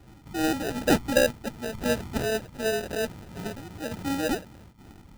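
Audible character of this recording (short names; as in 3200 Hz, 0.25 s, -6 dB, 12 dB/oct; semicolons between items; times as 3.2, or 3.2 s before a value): phasing stages 6, 2.7 Hz, lowest notch 420–2400 Hz; random-step tremolo 2.3 Hz, depth 75%; aliases and images of a low sample rate 1100 Hz, jitter 0%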